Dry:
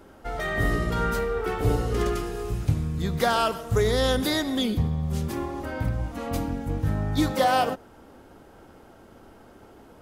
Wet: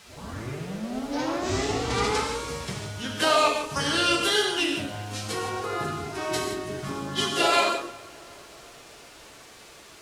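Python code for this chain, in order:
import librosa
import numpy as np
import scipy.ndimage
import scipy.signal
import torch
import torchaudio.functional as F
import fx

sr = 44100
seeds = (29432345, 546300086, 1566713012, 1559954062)

p1 = fx.tape_start_head(x, sr, length_s=2.34)
p2 = fx.highpass(p1, sr, hz=920.0, slope=6)
p3 = fx.high_shelf(p2, sr, hz=4500.0, db=9.0)
p4 = fx.rider(p3, sr, range_db=3, speed_s=2.0)
p5 = fx.formant_shift(p4, sr, semitones=-3)
p6 = fx.quant_dither(p5, sr, seeds[0], bits=8, dither='triangular')
p7 = fx.pitch_keep_formants(p6, sr, semitones=5.0)
p8 = fx.air_absorb(p7, sr, metres=67.0)
p9 = p8 + fx.echo_filtered(p8, sr, ms=366, feedback_pct=68, hz=2000.0, wet_db=-22, dry=0)
p10 = fx.rev_gated(p9, sr, seeds[1], gate_ms=190, shape='flat', drr_db=1.5)
y = p10 * librosa.db_to_amplitude(4.0)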